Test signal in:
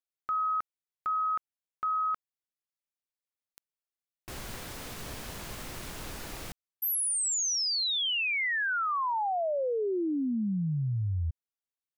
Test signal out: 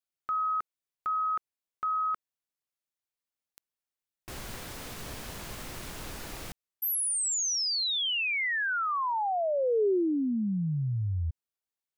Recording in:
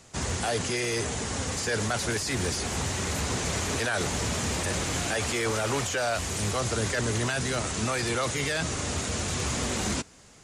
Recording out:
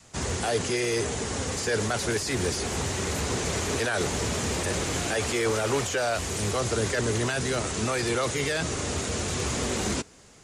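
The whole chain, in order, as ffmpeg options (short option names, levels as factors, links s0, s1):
-af "adynamicequalizer=threshold=0.00708:dfrequency=410:dqfactor=2:tfrequency=410:tqfactor=2:attack=5:release=100:ratio=0.375:range=2.5:mode=boostabove:tftype=bell"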